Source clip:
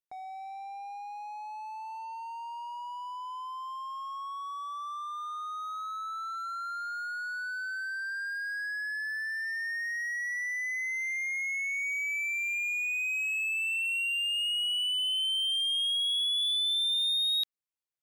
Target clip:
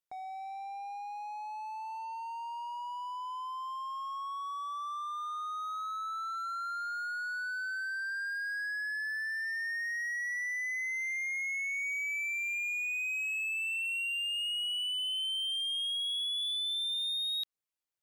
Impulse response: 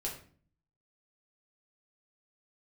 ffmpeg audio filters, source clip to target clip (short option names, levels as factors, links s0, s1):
-af "acompressor=threshold=0.0251:ratio=6"